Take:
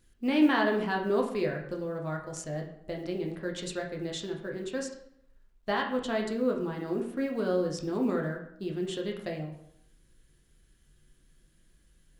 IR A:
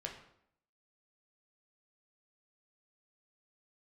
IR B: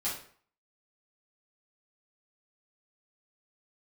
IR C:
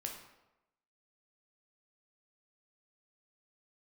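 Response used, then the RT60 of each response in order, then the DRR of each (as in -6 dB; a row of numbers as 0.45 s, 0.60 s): A; 0.70 s, 0.50 s, 0.95 s; 0.5 dB, -9.0 dB, 1.0 dB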